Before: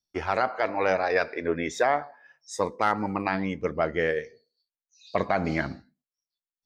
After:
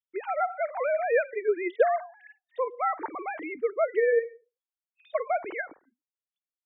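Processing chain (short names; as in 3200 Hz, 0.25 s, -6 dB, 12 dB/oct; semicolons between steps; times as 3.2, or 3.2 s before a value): sine-wave speech; gain -1 dB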